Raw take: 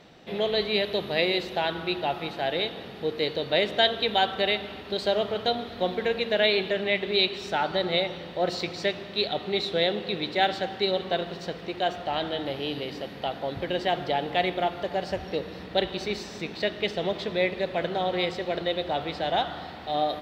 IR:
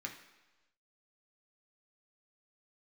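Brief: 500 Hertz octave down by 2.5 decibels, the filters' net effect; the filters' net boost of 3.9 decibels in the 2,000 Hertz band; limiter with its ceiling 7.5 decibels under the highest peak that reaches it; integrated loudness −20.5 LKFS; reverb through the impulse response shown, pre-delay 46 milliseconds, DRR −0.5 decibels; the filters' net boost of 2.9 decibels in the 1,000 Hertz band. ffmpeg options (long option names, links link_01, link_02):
-filter_complex "[0:a]equalizer=frequency=500:width_type=o:gain=-6,equalizer=frequency=1000:width_type=o:gain=7.5,equalizer=frequency=2000:width_type=o:gain=3,alimiter=limit=-14dB:level=0:latency=1,asplit=2[link_01][link_02];[1:a]atrim=start_sample=2205,adelay=46[link_03];[link_02][link_03]afir=irnorm=-1:irlink=0,volume=1dB[link_04];[link_01][link_04]amix=inputs=2:normalize=0,volume=5dB"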